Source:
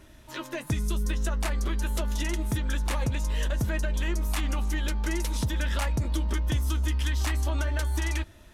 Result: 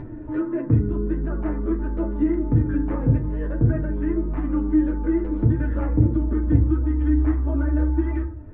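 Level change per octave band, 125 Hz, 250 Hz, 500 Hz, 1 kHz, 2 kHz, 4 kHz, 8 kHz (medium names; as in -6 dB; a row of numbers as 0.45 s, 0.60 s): +7.0 dB, +13.5 dB, +8.0 dB, -1.0 dB, -6.5 dB, under -25 dB, under -40 dB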